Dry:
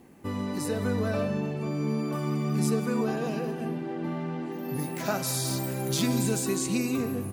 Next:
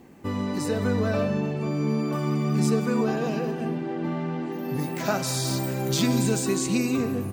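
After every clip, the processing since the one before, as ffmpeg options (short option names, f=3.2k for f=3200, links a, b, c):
-af "equalizer=f=11k:w=3.1:g=-14.5,volume=3.5dB"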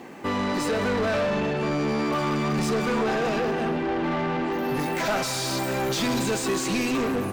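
-filter_complex "[0:a]asplit=2[a][b];[b]highpass=f=720:p=1,volume=28dB,asoftclip=type=tanh:threshold=-10.5dB[c];[a][c]amix=inputs=2:normalize=0,lowpass=f=3.2k:p=1,volume=-6dB,volume=-6.5dB"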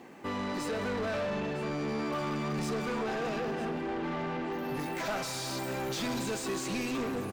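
-af "aecho=1:1:956:0.168,volume=-8.5dB"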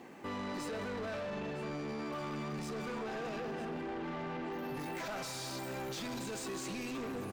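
-af "alimiter=level_in=9.5dB:limit=-24dB:level=0:latency=1:release=16,volume=-9.5dB,volume=-1.5dB"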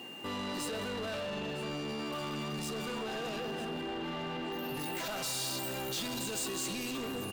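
-af "aexciter=amount=1.6:drive=7.2:freq=3.2k,aeval=exprs='val(0)+0.00447*sin(2*PI*2800*n/s)':c=same,volume=1.5dB"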